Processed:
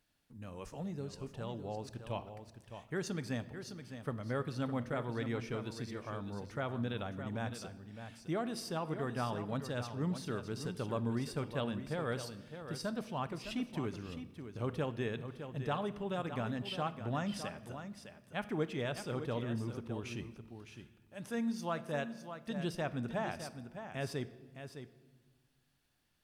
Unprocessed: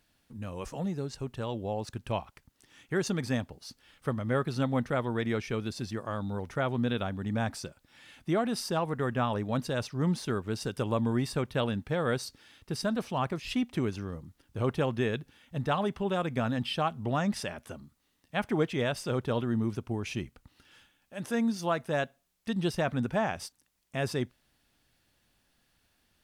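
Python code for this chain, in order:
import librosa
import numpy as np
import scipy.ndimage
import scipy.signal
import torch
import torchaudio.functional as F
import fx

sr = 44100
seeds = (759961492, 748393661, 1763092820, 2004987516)

p1 = x + fx.echo_single(x, sr, ms=610, db=-9.5, dry=0)
p2 = fx.room_shoebox(p1, sr, seeds[0], volume_m3=1200.0, walls='mixed', distance_m=0.37)
y = p2 * 10.0 ** (-8.0 / 20.0)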